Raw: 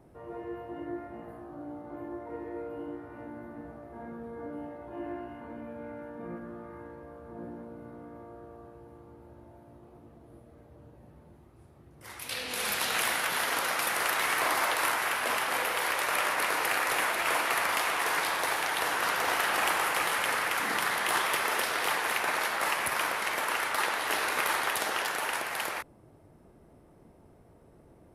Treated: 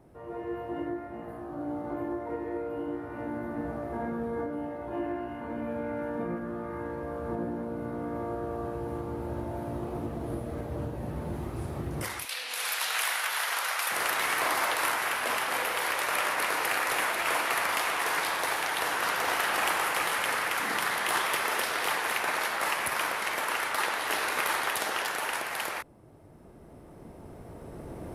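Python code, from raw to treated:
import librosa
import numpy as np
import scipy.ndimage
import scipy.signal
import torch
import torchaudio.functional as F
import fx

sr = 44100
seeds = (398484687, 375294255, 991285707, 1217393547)

y = fx.recorder_agc(x, sr, target_db=-24.5, rise_db_per_s=7.4, max_gain_db=30)
y = fx.highpass(y, sr, hz=750.0, slope=12, at=(12.25, 13.91))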